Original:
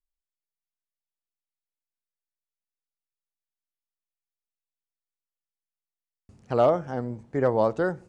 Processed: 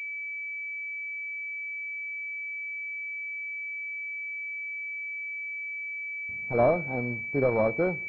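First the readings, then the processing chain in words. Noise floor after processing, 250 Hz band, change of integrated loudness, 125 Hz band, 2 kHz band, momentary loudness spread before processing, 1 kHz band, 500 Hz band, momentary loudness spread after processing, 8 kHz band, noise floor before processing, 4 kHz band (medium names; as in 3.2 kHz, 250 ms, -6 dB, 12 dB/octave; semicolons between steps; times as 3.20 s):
-36 dBFS, -1.0 dB, -5.5 dB, -1.0 dB, +15.0 dB, 10 LU, -3.5 dB, -2.0 dB, 8 LU, no reading, under -85 dBFS, under -10 dB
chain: CVSD coder 16 kbps; class-D stage that switches slowly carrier 2.3 kHz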